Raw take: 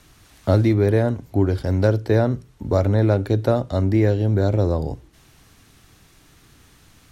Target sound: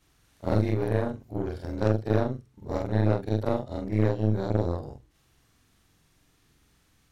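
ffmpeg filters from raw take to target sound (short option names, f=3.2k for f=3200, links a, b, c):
-af "afftfilt=real='re':imag='-im':win_size=4096:overlap=0.75,aeval=exprs='0.531*(cos(1*acos(clip(val(0)/0.531,-1,1)))-cos(1*PI/2))+0.0422*(cos(6*acos(clip(val(0)/0.531,-1,1)))-cos(6*PI/2))+0.0335*(cos(7*acos(clip(val(0)/0.531,-1,1)))-cos(7*PI/2))':c=same,volume=-3.5dB"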